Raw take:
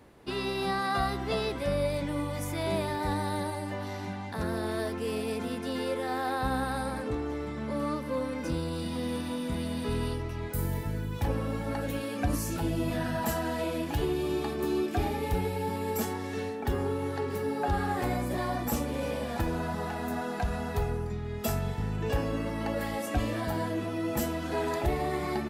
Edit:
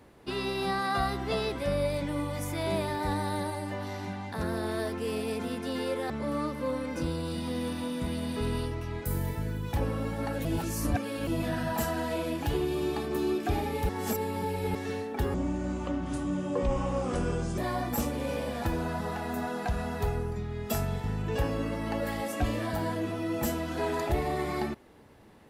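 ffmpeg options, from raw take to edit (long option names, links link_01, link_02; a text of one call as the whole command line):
ffmpeg -i in.wav -filter_complex "[0:a]asplit=8[link_01][link_02][link_03][link_04][link_05][link_06][link_07][link_08];[link_01]atrim=end=6.102[link_09];[link_02]atrim=start=7.578:end=11.932[link_10];[link_03]atrim=start=11.928:end=12.752,asetpts=PTS-STARTPTS,areverse[link_11];[link_04]atrim=start=12.748:end=15.372[link_12];[link_05]atrim=start=15.368:end=16.232,asetpts=PTS-STARTPTS,areverse[link_13];[link_06]atrim=start=16.228:end=16.824[link_14];[link_07]atrim=start=16.82:end=18.32,asetpts=PTS-STARTPTS,asetrate=29547,aresample=44100,atrim=end_sample=98731,asetpts=PTS-STARTPTS[link_15];[link_08]atrim=start=18.316[link_16];[link_09][link_10]acrossfade=duration=0.004:curve1=hsin:curve2=hsin[link_17];[link_17][link_11]acrossfade=duration=0.004:curve1=hsin:curve2=hsin[link_18];[link_18][link_12]acrossfade=duration=0.004:curve1=hsin:curve2=hsin[link_19];[link_19][link_13]acrossfade=duration=0.004:curve1=hsin:curve2=hsin[link_20];[link_20][link_14]acrossfade=duration=0.004:curve1=hsin:curve2=hsin[link_21];[link_21][link_15]acrossfade=duration=0.004:curve1=hsin:curve2=hsin[link_22];[link_22][link_16]acrossfade=duration=0.004:curve1=hsin:curve2=hsin" out.wav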